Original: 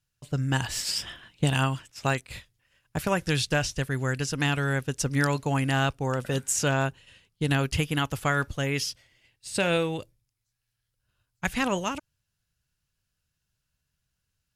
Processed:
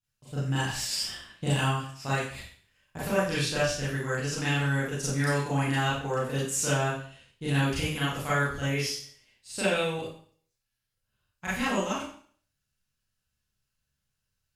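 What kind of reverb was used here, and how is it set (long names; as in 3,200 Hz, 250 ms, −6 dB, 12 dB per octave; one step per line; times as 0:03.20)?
four-comb reverb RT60 0.51 s, combs from 29 ms, DRR −10 dB
level −11.5 dB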